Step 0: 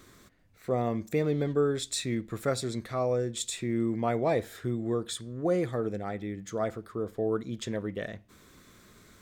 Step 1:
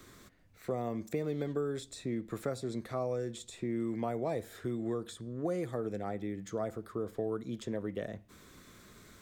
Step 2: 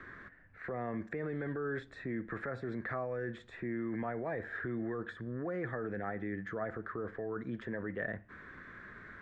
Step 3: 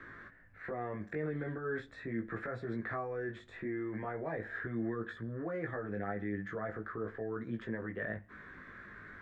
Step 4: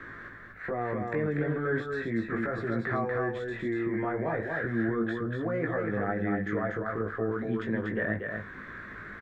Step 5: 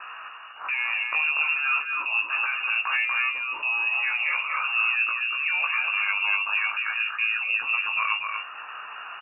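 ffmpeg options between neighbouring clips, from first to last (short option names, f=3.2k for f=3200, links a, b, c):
-filter_complex "[0:a]acrossover=split=190|1100|6600[a][b][c][d];[a]acompressor=threshold=-45dB:ratio=4[e];[b]acompressor=threshold=-33dB:ratio=4[f];[c]acompressor=threshold=-52dB:ratio=4[g];[d]acompressor=threshold=-56dB:ratio=4[h];[e][f][g][h]amix=inputs=4:normalize=0"
-af "alimiter=level_in=7.5dB:limit=-24dB:level=0:latency=1:release=12,volume=-7.5dB,lowpass=f=1.7k:t=q:w=6.6,volume=1dB"
-af "flanger=delay=17.5:depth=2.3:speed=0.4,volume=2.5dB"
-af "aecho=1:1:240:0.631,volume=7dB"
-af "lowpass=f=2.5k:t=q:w=0.5098,lowpass=f=2.5k:t=q:w=0.6013,lowpass=f=2.5k:t=q:w=0.9,lowpass=f=2.5k:t=q:w=2.563,afreqshift=-2900,volume=4.5dB"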